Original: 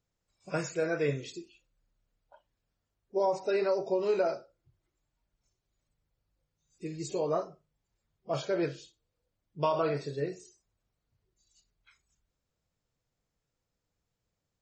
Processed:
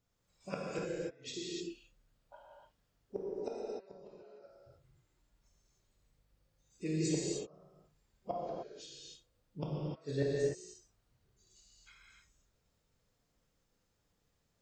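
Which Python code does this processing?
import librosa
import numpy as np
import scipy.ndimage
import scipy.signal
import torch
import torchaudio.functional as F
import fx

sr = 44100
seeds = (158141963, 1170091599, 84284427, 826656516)

y = fx.gate_flip(x, sr, shuts_db=-25.0, range_db=-37)
y = fx.rev_gated(y, sr, seeds[0], gate_ms=330, shape='flat', drr_db=-5.0)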